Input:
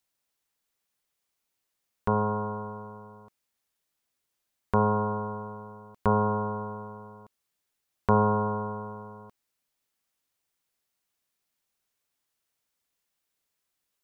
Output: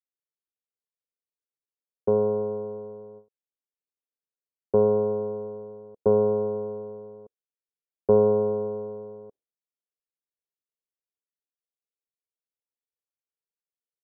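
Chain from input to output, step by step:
low-pass with resonance 470 Hz, resonance Q 4.2
low-shelf EQ 200 Hz −6.5 dB
noise gate with hold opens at −37 dBFS

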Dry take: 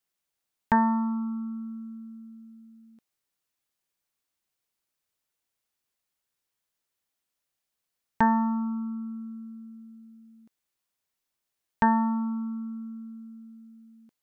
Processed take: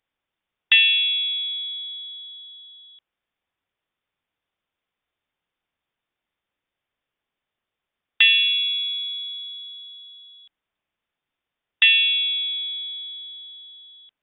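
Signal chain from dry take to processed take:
voice inversion scrambler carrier 3,600 Hz
level +6 dB

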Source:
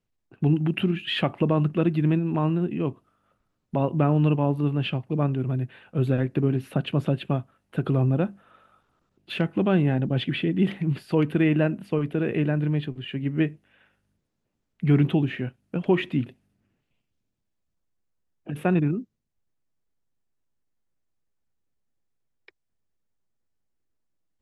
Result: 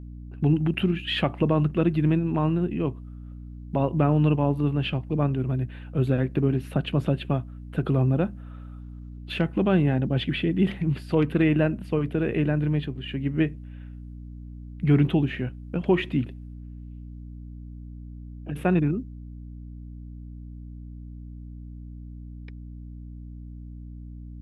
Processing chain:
mains hum 60 Hz, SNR 13 dB
0:11.00–0:11.42: highs frequency-modulated by the lows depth 0.14 ms

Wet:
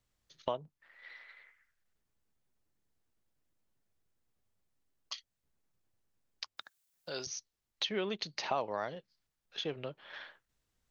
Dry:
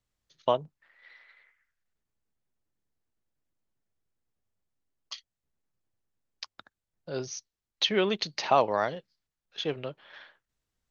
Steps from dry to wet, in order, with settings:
0:06.57–0:07.27: spectral tilt +4 dB per octave
downward compressor 2 to 1, threshold −44 dBFS, peak gain reduction 14.5 dB
level +2.5 dB

